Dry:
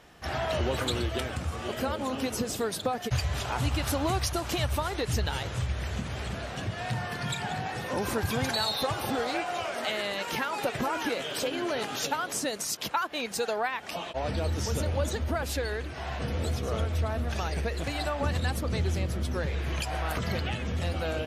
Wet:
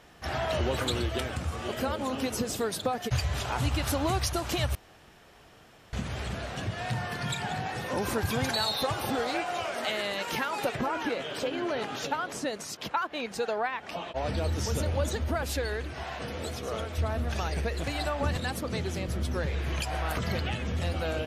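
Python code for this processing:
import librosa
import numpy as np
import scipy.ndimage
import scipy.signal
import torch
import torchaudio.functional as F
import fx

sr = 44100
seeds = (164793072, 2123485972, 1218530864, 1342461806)

y = fx.lowpass(x, sr, hz=2900.0, slope=6, at=(10.75, 14.16))
y = fx.low_shelf(y, sr, hz=170.0, db=-12.0, at=(16.03, 16.98))
y = fx.highpass(y, sr, hz=120.0, slope=12, at=(18.36, 19.08))
y = fx.edit(y, sr, fx.room_tone_fill(start_s=4.75, length_s=1.18), tone=tone)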